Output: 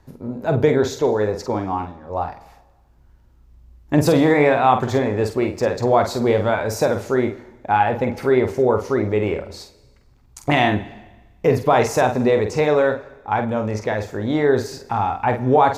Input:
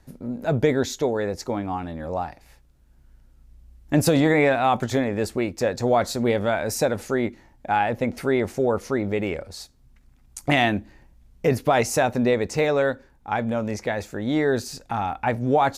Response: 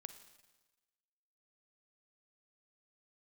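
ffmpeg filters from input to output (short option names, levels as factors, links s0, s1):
-filter_complex "[0:a]equalizer=f=100:t=o:w=0.67:g=6,equalizer=f=400:t=o:w=0.67:g=5,equalizer=f=1000:t=o:w=0.67:g=7,equalizer=f=10000:t=o:w=0.67:g=-7,asplit=3[s0][s1][s2];[s0]afade=t=out:st=1.84:d=0.02[s3];[s1]agate=range=0.0224:threshold=0.0891:ratio=3:detection=peak,afade=t=in:st=1.84:d=0.02,afade=t=out:st=2.27:d=0.02[s4];[s2]afade=t=in:st=2.27:d=0.02[s5];[s3][s4][s5]amix=inputs=3:normalize=0,asplit=2[s6][s7];[1:a]atrim=start_sample=2205,adelay=47[s8];[s7][s8]afir=irnorm=-1:irlink=0,volume=0.891[s9];[s6][s9]amix=inputs=2:normalize=0"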